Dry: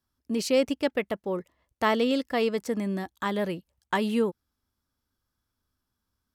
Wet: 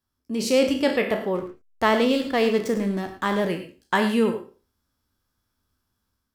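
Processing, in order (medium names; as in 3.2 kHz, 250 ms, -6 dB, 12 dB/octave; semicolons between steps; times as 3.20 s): spectral sustain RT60 0.35 s; level rider gain up to 5.5 dB; 1.35–3.48 s: hysteresis with a dead band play -31.5 dBFS; gated-style reverb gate 130 ms rising, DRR 9.5 dB; trim -1.5 dB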